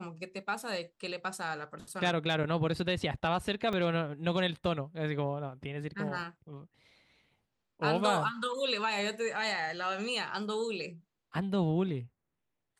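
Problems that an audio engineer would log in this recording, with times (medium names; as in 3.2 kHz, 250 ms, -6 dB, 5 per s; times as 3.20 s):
3.73 s: dropout 3.5 ms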